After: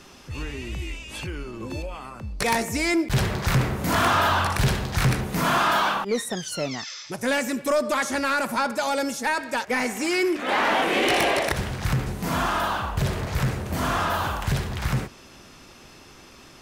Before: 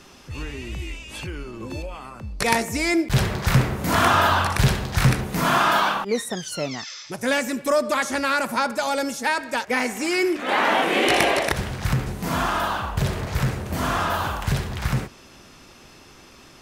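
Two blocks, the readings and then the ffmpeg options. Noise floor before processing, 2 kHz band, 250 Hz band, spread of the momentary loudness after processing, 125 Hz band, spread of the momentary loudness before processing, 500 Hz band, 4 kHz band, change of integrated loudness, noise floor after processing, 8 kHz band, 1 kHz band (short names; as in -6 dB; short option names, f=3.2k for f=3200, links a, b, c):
-48 dBFS, -2.0 dB, -1.5 dB, 13 LU, -2.0 dB, 15 LU, -1.5 dB, -1.5 dB, -2.0 dB, -48 dBFS, -1.0 dB, -2.0 dB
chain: -af "asoftclip=type=tanh:threshold=-14.5dB"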